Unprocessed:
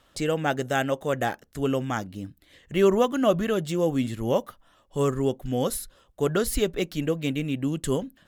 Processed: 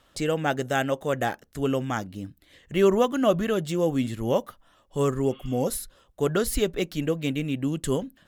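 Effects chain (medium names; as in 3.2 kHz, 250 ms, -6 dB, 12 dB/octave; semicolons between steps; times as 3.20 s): spectral replace 5.29–5.65 s, 1–4.5 kHz before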